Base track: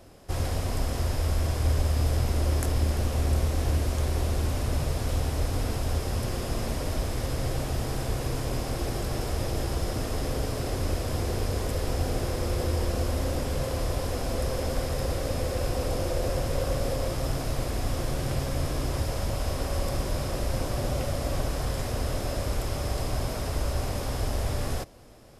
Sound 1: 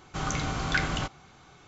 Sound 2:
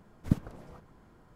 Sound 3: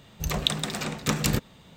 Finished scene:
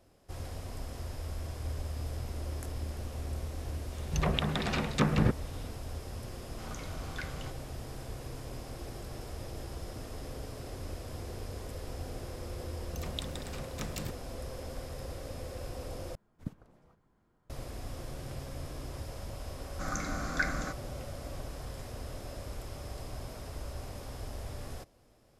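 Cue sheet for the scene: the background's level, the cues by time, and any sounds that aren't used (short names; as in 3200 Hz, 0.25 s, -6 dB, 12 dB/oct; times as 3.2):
base track -12.5 dB
3.92 add 3 + treble ducked by the level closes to 1600 Hz, closed at -23 dBFS
6.44 add 1 -15 dB
12.72 add 3 -15 dB
16.15 replace with 2 -13.5 dB
19.65 add 1 -2.5 dB + fixed phaser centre 600 Hz, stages 8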